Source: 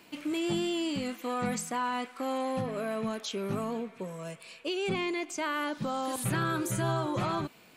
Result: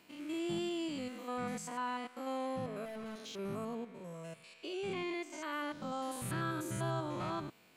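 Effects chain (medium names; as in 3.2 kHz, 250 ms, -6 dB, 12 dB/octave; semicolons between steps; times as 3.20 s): spectrogram pixelated in time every 100 ms; 2.85–3.39 s: overload inside the chain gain 35.5 dB; trim -6 dB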